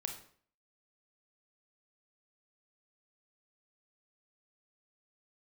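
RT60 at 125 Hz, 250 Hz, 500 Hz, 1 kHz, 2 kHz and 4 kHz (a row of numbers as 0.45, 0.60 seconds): 0.55, 0.55, 0.55, 0.50, 0.50, 0.45 seconds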